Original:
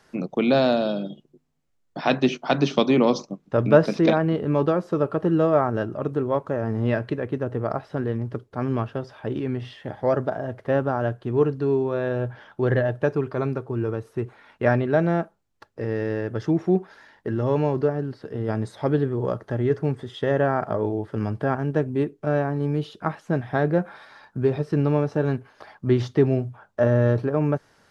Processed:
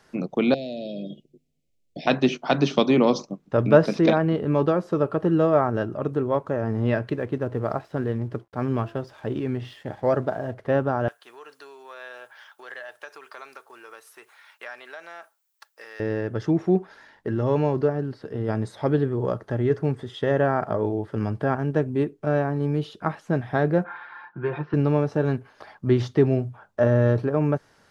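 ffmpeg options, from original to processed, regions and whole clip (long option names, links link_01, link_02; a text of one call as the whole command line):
ffmpeg -i in.wav -filter_complex "[0:a]asettb=1/sr,asplit=3[link_01][link_02][link_03];[link_01]atrim=end=0.544[link_04];[link_02]atrim=start=0.54:end=2.07,asetpts=PTS-STARTPTS,afade=type=in:duration=0.004:curve=qsin,afade=type=out:start_time=1.526:duration=0.004:curve=qsin,acompressor=threshold=-28dB:ratio=6:attack=3.2:release=140:knee=1:detection=peak,asuperstop=centerf=1200:order=8:qfactor=0.81[link_05];[link_03]atrim=start=2.066[link_06];[link_04][link_05]acrossfade=duration=0.004:curve1=hsin:curve2=qsin[link_07];[link_07][link_06]acrossfade=duration=0.004:curve1=qsin:curve2=hsin,asettb=1/sr,asplit=3[link_08][link_09][link_10];[link_08]atrim=end=7.074[link_11];[link_09]atrim=start=7.07:end=10.54,asetpts=PTS-STARTPTS,afade=type=in:duration=0.004:curve=qsin,afade=type=out:start_time=3.466:duration=0.004:curve=qsin,bandreject=frequency=338.9:width_type=h:width=4,bandreject=frequency=677.8:width_type=h:width=4,bandreject=frequency=1016.7:width_type=h:width=4,aeval=exprs='sgn(val(0))*max(abs(val(0))-0.0015,0)':channel_layout=same[link_12];[link_10]atrim=start=10.536[link_13];[link_11][link_12]acrossfade=duration=0.004:curve1=hsin:curve2=qsin[link_14];[link_14][link_13]acrossfade=duration=0.004:curve1=qsin:curve2=hsin,asettb=1/sr,asplit=3[link_15][link_16][link_17];[link_15]atrim=end=11.084[link_18];[link_16]atrim=start=11.08:end=16,asetpts=PTS-STARTPTS,afade=type=in:duration=0.004:curve=qsin,afade=type=out:start_time=4.916:duration=0.004:curve=qsin,aemphasis=mode=production:type=bsi,acompressor=threshold=-26dB:ratio=6:attack=3.2:release=140:knee=1:detection=peak,highpass=1100[link_19];[link_17]atrim=start=15.996[link_20];[link_18][link_19]acrossfade=duration=0.004:curve1=hsin:curve2=qsin[link_21];[link_21][link_20]acrossfade=duration=0.004:curve1=qsin:curve2=hsin,asettb=1/sr,asplit=3[link_22][link_23][link_24];[link_22]atrim=end=23.844[link_25];[link_23]atrim=start=23.84:end=24.74,asetpts=PTS-STARTPTS,afade=type=in:duration=0.004:curve=qsin,afade=type=out:start_time=0.896:duration=0.004:curve=qsin,highpass=190,equalizer=frequency=210:width_type=q:width=4:gain=-9,equalizer=frequency=410:width_type=q:width=4:gain=-5,equalizer=frequency=590:width_type=q:width=4:gain=-9,equalizer=frequency=980:width_type=q:width=4:gain=8,equalizer=frequency=1500:width_type=q:width=4:gain=7,lowpass=frequency=3000:width=0.5412,lowpass=frequency=3000:width=1.3066,aecho=1:1:5.7:0.69,atrim=end_sample=39690[link_26];[link_24]atrim=start=24.736[link_27];[link_25][link_26]acrossfade=duration=0.004:curve1=hsin:curve2=qsin[link_28];[link_28][link_27]acrossfade=duration=0.004:curve1=qsin:curve2=hsin" out.wav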